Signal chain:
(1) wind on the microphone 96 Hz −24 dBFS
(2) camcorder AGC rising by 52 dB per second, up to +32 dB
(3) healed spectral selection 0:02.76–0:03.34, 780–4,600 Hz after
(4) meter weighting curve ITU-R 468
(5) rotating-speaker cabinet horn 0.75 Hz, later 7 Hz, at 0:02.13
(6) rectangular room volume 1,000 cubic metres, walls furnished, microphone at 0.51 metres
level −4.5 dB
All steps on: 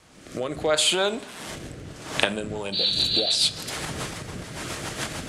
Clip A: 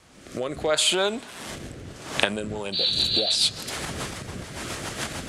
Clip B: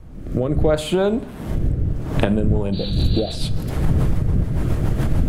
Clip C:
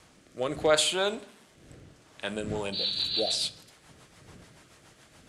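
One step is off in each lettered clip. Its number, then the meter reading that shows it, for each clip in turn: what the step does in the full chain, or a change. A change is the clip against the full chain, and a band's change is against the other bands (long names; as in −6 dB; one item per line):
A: 6, echo-to-direct ratio −13.0 dB to none audible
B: 4, 125 Hz band +20.5 dB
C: 2, change in crest factor −3.0 dB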